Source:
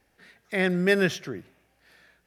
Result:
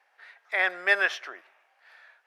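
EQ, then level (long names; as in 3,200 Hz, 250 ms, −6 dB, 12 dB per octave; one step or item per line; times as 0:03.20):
high-pass filter 810 Hz 24 dB per octave
spectral tilt −2.5 dB per octave
high-shelf EQ 4,500 Hz −12 dB
+8.0 dB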